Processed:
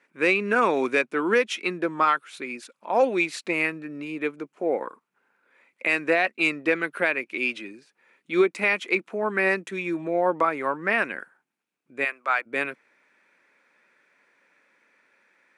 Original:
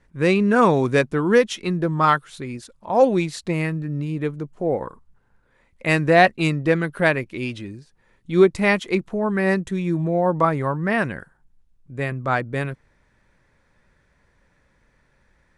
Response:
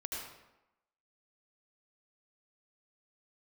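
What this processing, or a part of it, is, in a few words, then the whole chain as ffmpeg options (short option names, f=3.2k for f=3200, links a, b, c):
laptop speaker: -filter_complex "[0:a]highpass=f=260:w=0.5412,highpass=f=260:w=1.3066,equalizer=f=1.4k:t=o:w=0.52:g=5,equalizer=f=2.4k:t=o:w=0.48:g=11,alimiter=limit=-8dB:level=0:latency=1:release=242,asplit=3[a][b][c];[a]afade=t=out:st=12.04:d=0.02[d];[b]highpass=740,afade=t=in:st=12.04:d=0.02,afade=t=out:st=12.45:d=0.02[e];[c]afade=t=in:st=12.45:d=0.02[f];[d][e][f]amix=inputs=3:normalize=0,volume=-2.5dB"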